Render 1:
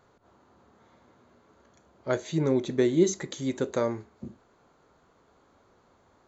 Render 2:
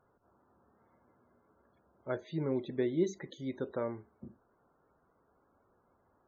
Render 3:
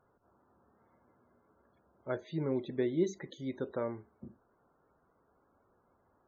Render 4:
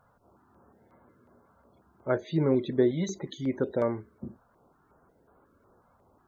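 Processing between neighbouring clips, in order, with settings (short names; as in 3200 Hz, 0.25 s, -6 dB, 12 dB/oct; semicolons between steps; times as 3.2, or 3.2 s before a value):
LPF 4200 Hz 12 dB/oct; loudest bins only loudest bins 64; gain -8.5 dB
nothing audible
stepped notch 5.5 Hz 360–5600 Hz; gain +9 dB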